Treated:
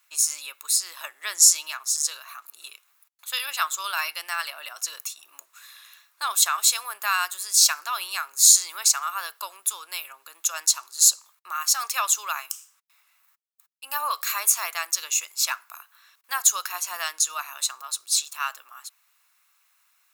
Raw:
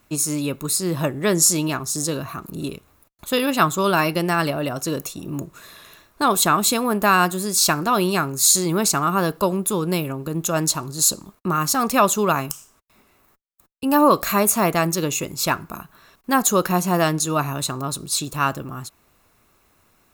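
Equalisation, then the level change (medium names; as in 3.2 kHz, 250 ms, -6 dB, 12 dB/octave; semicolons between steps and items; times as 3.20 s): Bessel high-pass 1.6 kHz, order 4; dynamic bell 6 kHz, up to +6 dB, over -35 dBFS, Q 1.5; -2.0 dB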